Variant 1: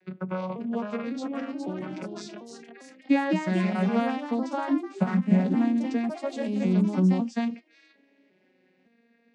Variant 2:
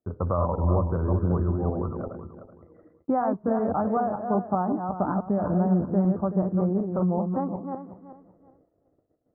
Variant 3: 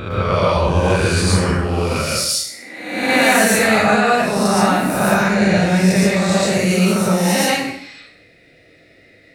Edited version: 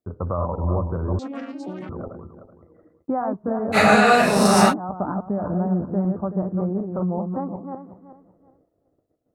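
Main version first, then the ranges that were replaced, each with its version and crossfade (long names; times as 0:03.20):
2
0:01.19–0:01.89: punch in from 1
0:03.75–0:04.71: punch in from 3, crossfade 0.06 s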